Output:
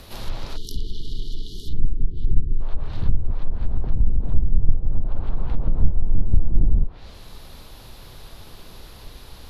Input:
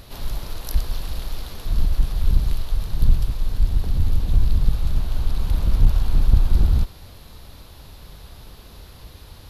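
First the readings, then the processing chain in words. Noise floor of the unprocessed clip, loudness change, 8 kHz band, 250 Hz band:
−44 dBFS, −3.5 dB, can't be measured, −1.0 dB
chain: time-frequency box erased 0:00.56–0:02.61, 490–2,900 Hz
frequency shifter −32 Hz
treble cut that deepens with the level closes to 390 Hz, closed at −12 dBFS
level +2 dB

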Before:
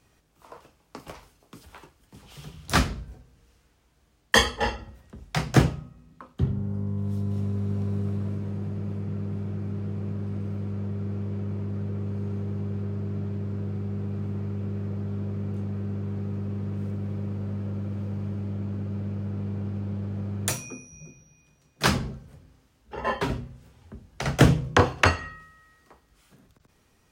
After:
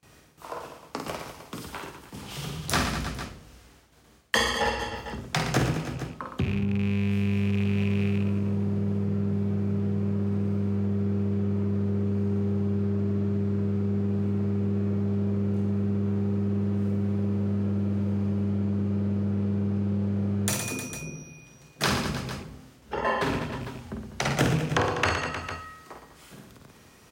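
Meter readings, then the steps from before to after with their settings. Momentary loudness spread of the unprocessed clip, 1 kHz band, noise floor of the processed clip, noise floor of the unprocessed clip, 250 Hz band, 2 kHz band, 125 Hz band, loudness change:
20 LU, −0.5 dB, −54 dBFS, −64 dBFS, +4.5 dB, −1.5 dB, +0.5 dB, +0.5 dB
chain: loose part that buzzes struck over −24 dBFS, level −26 dBFS
in parallel at +1.5 dB: brickwall limiter −16 dBFS, peak gain reduction 11 dB
on the sum: noise gate with hold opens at −48 dBFS
high-pass filter 110 Hz 6 dB per octave
on a send: reverse bouncing-ball delay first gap 50 ms, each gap 1.3×, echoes 5
on the sum: downward compressor 2 to 1, threshold −33 dBFS, peak gain reduction 13 dB
level +2.5 dB

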